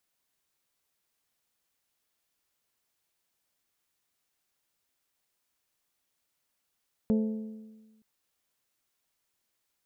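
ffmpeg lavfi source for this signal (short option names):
-f lavfi -i "aevalsrc='0.0891*pow(10,-3*t/1.33)*sin(2*PI*218*t)+0.0355*pow(10,-3*t/1.08)*sin(2*PI*436*t)+0.0141*pow(10,-3*t/1.023)*sin(2*PI*523.2*t)+0.00562*pow(10,-3*t/0.957)*sin(2*PI*654*t)+0.00224*pow(10,-3*t/0.877)*sin(2*PI*872*t)':d=0.92:s=44100"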